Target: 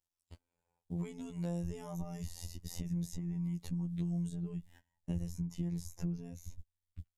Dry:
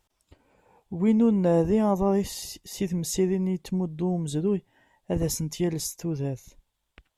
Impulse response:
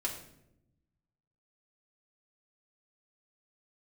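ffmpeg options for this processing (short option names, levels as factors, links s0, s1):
-filter_complex "[0:a]agate=range=0.0562:threshold=0.00282:ratio=16:detection=peak,bass=f=250:g=2,treble=f=4000:g=10,acrossover=split=220|1800[s0][s1][s2];[s0]acompressor=threshold=0.0158:ratio=4[s3];[s1]acompressor=threshold=0.0178:ratio=4[s4];[s2]acompressor=threshold=0.00355:ratio=4[s5];[s3][s4][s5]amix=inputs=3:normalize=0,asubboost=boost=8.5:cutoff=130,acompressor=threshold=0.0141:ratio=4,afftfilt=real='hypot(re,im)*cos(PI*b)':imag='0':win_size=2048:overlap=0.75,volume=1.41"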